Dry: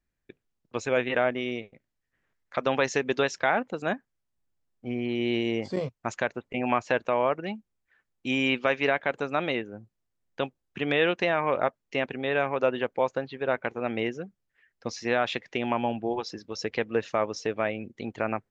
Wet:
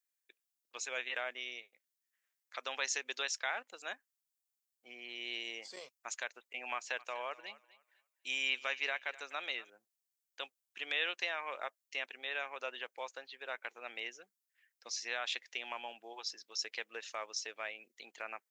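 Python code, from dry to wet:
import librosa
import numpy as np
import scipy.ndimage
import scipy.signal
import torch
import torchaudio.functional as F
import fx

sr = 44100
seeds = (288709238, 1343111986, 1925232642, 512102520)

y = fx.echo_thinned(x, sr, ms=248, feedback_pct=24, hz=420.0, wet_db=-18.0, at=(6.74, 9.7))
y = scipy.signal.sosfilt(scipy.signal.butter(2, 340.0, 'highpass', fs=sr, output='sos'), y)
y = np.diff(y, prepend=0.0)
y = y * 10.0 ** (3.0 / 20.0)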